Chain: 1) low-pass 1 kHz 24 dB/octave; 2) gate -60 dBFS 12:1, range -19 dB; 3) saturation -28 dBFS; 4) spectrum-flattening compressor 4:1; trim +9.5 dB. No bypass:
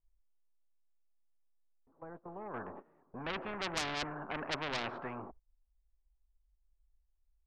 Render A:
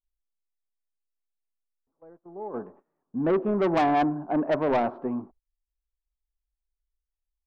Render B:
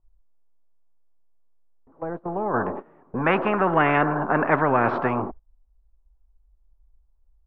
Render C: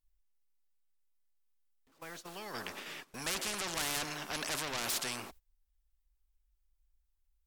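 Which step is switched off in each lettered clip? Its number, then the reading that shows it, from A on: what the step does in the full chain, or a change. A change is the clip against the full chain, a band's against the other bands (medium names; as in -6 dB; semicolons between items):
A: 4, 4 kHz band -18.5 dB; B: 3, distortion -9 dB; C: 1, 8 kHz band +15.0 dB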